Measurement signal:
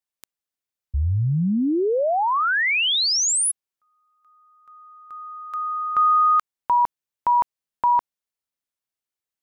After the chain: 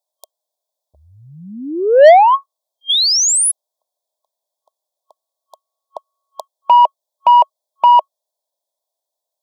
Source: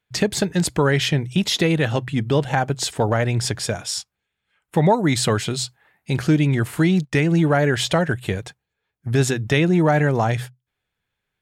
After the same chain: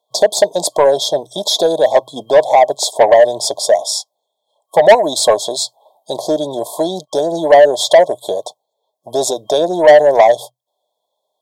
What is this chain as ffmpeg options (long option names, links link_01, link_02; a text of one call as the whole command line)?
ffmpeg -i in.wav -af "afftfilt=real='re*(1-between(b*sr/4096,1100,3200))':imag='im*(1-between(b*sr/4096,1100,3200))':win_size=4096:overlap=0.75,highpass=frequency=620:width_type=q:width=6.8,aeval=exprs='0.75*(cos(1*acos(clip(val(0)/0.75,-1,1)))-cos(1*PI/2))+0.00422*(cos(4*acos(clip(val(0)/0.75,-1,1)))-cos(4*PI/2))':channel_layout=same,acontrast=88" out.wav